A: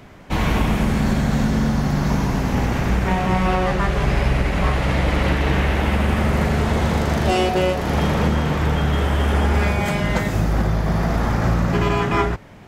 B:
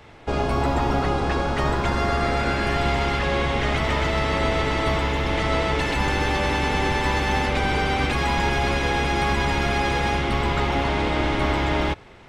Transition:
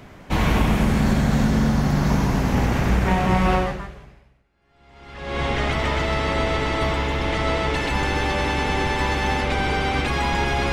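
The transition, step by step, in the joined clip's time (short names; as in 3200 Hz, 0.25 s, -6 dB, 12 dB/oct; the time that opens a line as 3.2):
A
4.5 switch to B from 2.55 s, crossfade 1.84 s exponential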